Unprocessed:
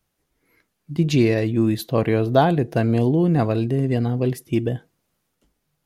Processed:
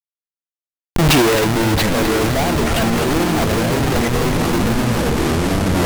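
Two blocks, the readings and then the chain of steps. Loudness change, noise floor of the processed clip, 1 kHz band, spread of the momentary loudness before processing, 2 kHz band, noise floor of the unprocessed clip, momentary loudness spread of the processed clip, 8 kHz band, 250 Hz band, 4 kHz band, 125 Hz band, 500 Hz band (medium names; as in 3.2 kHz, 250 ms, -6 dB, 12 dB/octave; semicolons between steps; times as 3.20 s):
+4.0 dB, under -85 dBFS, +7.5 dB, 6 LU, +12.5 dB, -75 dBFS, 4 LU, no reading, +3.5 dB, +14.5 dB, +2.5 dB, +3.5 dB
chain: level-controlled noise filter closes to 540 Hz, open at -16.5 dBFS; in parallel at +1.5 dB: level held to a coarse grid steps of 21 dB; on the sum: overdrive pedal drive 23 dB, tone 4.7 kHz, clips at -0.5 dBFS; Schmitt trigger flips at -15 dBFS; ever faster or slower copies 227 ms, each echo -6 st, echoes 2; on a send: two-band feedback delay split 580 Hz, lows 448 ms, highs 259 ms, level -8.5 dB; on the sum: loudness maximiser +9.5 dB; trim -8.5 dB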